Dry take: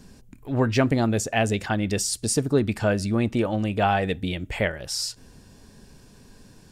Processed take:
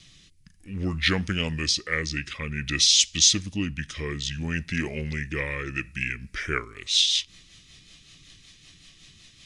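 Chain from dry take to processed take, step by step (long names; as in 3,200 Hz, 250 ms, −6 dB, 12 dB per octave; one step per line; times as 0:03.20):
rotating-speaker cabinet horn 0.8 Hz, later 7.5 Hz, at 0:03.90
speed change −29%
high shelf with overshoot 1,500 Hz +14 dB, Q 1.5
level −6 dB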